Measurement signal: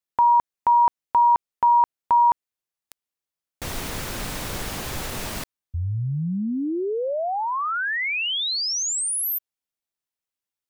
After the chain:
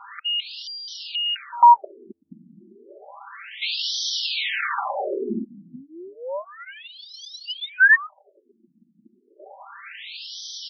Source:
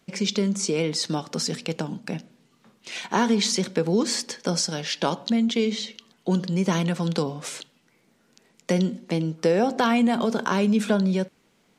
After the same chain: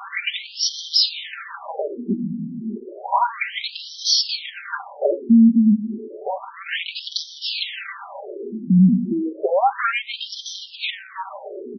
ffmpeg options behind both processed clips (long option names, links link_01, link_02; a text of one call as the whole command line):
ffmpeg -i in.wav -filter_complex "[0:a]aeval=exprs='val(0)+0.5*0.0237*sgn(val(0))':channel_layout=same,aecho=1:1:5.1:0.99,asplit=2[link_01][link_02];[link_02]alimiter=limit=-13dB:level=0:latency=1,volume=-1.5dB[link_03];[link_01][link_03]amix=inputs=2:normalize=0,acontrast=42,asoftclip=type=tanh:threshold=-5dB,asplit=2[link_04][link_05];[link_05]adelay=380,highpass=300,lowpass=3400,asoftclip=type=hard:threshold=-14.5dB,volume=-16dB[link_06];[link_04][link_06]amix=inputs=2:normalize=0,afftfilt=real='re*between(b*sr/1024,220*pow(4400/220,0.5+0.5*sin(2*PI*0.31*pts/sr))/1.41,220*pow(4400/220,0.5+0.5*sin(2*PI*0.31*pts/sr))*1.41)':imag='im*between(b*sr/1024,220*pow(4400/220,0.5+0.5*sin(2*PI*0.31*pts/sr))/1.41,220*pow(4400/220,0.5+0.5*sin(2*PI*0.31*pts/sr))*1.41)':win_size=1024:overlap=0.75,volume=-1dB" out.wav